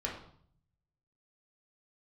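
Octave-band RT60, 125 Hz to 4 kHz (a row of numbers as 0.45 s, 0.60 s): 1.2 s, 0.80 s, 0.60 s, 0.60 s, 0.50 s, 0.50 s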